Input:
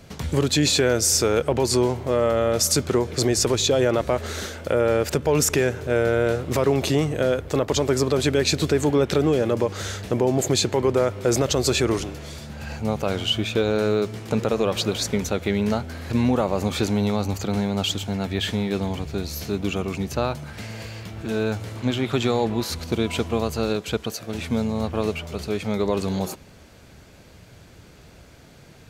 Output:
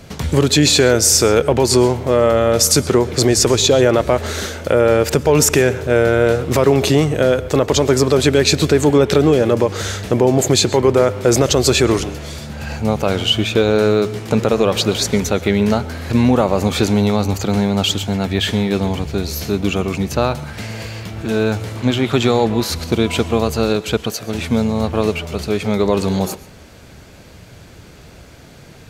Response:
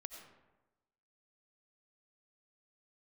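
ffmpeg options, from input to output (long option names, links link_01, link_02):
-filter_complex "[0:a]asplit=2[link_01][link_02];[1:a]atrim=start_sample=2205,atrim=end_sample=4410,asetrate=30429,aresample=44100[link_03];[link_02][link_03]afir=irnorm=-1:irlink=0,volume=-3.5dB[link_04];[link_01][link_04]amix=inputs=2:normalize=0,volume=4dB"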